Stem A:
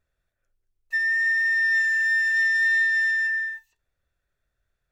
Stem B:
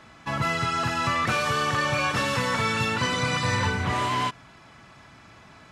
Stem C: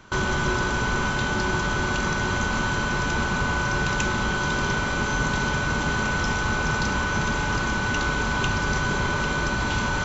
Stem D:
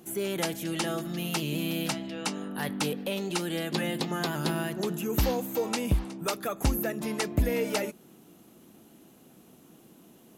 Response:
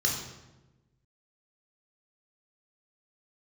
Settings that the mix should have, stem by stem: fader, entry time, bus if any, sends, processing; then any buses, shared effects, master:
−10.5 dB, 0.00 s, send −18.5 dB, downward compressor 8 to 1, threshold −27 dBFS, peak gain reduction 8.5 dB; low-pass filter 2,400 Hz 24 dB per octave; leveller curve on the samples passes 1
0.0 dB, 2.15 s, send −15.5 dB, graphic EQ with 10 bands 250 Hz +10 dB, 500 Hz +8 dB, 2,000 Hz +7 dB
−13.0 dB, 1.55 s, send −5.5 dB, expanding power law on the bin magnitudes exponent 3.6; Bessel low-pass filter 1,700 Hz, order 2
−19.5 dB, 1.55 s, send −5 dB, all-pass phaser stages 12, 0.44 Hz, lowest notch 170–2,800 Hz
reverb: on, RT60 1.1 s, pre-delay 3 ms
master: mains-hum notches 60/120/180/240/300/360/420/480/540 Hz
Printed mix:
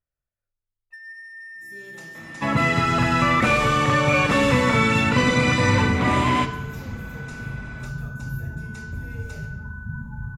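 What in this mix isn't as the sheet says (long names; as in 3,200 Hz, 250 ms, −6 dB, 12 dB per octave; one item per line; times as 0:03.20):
stem C: entry 1.55 s → 2.70 s
stem D: missing all-pass phaser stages 12, 0.44 Hz, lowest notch 170–2,800 Hz
master: missing mains-hum notches 60/120/180/240/300/360/420/480/540 Hz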